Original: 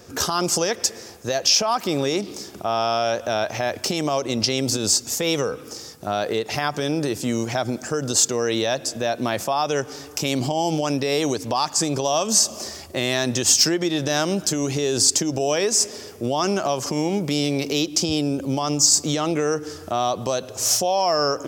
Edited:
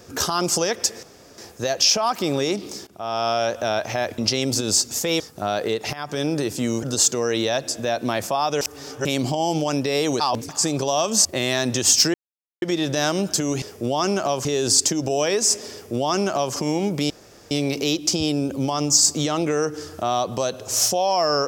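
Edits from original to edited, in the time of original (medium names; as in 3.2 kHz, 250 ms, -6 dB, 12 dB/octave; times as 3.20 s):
1.03 s: insert room tone 0.35 s
2.52–2.93 s: fade in, from -19 dB
3.83–4.34 s: delete
5.36–5.85 s: delete
6.58–6.86 s: fade in, from -15.5 dB
7.48–8.00 s: delete
9.78–10.22 s: reverse
11.37–11.66 s: reverse
12.42–12.86 s: delete
13.75 s: insert silence 0.48 s
16.02–16.85 s: copy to 14.75 s
17.40 s: insert room tone 0.41 s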